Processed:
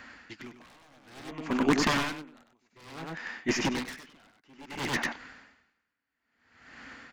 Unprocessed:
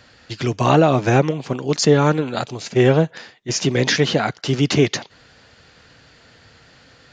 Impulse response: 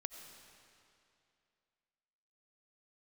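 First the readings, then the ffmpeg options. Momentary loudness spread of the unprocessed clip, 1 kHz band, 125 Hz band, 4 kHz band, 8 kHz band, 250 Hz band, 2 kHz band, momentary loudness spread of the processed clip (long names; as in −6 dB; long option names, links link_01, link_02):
10 LU, −13.0 dB, −22.5 dB, −12.0 dB, −13.0 dB, −12.0 dB, −8.0 dB, 22 LU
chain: -filter_complex "[0:a]equalizer=frequency=125:width_type=o:width=1:gain=-12,equalizer=frequency=250:width_type=o:width=1:gain=10,equalizer=frequency=500:width_type=o:width=1:gain=-6,equalizer=frequency=1000:width_type=o:width=1:gain=6,equalizer=frequency=2000:width_type=o:width=1:gain=9,equalizer=frequency=4000:width_type=o:width=1:gain=-6,aeval=exprs='1.33*(cos(1*acos(clip(val(0)/1.33,-1,1)))-cos(1*PI/2))+0.0668*(cos(6*acos(clip(val(0)/1.33,-1,1)))-cos(6*PI/2))+0.0531*(cos(7*acos(clip(val(0)/1.33,-1,1)))-cos(7*PI/2))':channel_layout=same,acrossover=split=4600[link_01][link_02];[link_02]acompressor=threshold=-39dB:ratio=4:attack=1:release=60[link_03];[link_01][link_03]amix=inputs=2:normalize=0,aeval=exprs='0.178*(abs(mod(val(0)/0.178+3,4)-2)-1)':channel_layout=same,aecho=1:1:98:0.631,aeval=exprs='val(0)*pow(10,-39*(0.5-0.5*cos(2*PI*0.58*n/s))/20)':channel_layout=same"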